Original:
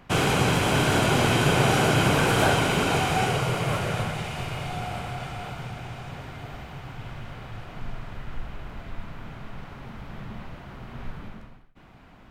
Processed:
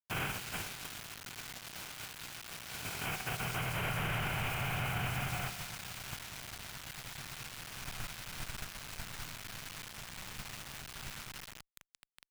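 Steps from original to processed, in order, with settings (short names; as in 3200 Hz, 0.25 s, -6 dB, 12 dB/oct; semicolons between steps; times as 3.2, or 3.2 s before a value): per-bin compression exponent 0.6; split-band echo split 1200 Hz, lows 0.207 s, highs 0.149 s, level -3.5 dB; negative-ratio compressor -20 dBFS, ratio -0.5; gate -19 dBFS, range -20 dB; band shelf 5800 Hz -13.5 dB; bit-crush 7-bit; passive tone stack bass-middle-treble 5-5-5; limiter -36 dBFS, peak gain reduction 12.5 dB; gain +9.5 dB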